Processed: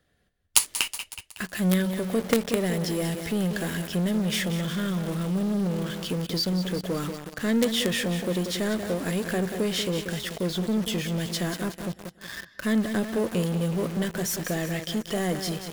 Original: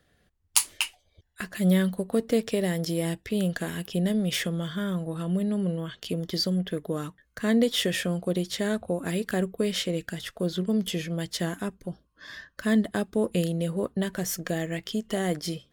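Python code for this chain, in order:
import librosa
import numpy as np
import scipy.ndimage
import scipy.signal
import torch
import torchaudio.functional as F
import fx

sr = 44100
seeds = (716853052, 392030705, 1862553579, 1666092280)

p1 = fx.echo_feedback(x, sr, ms=185, feedback_pct=49, wet_db=-11.0)
p2 = fx.quant_companded(p1, sr, bits=2)
p3 = p1 + (p2 * librosa.db_to_amplitude(-5.0))
y = p3 * librosa.db_to_amplitude(-3.5)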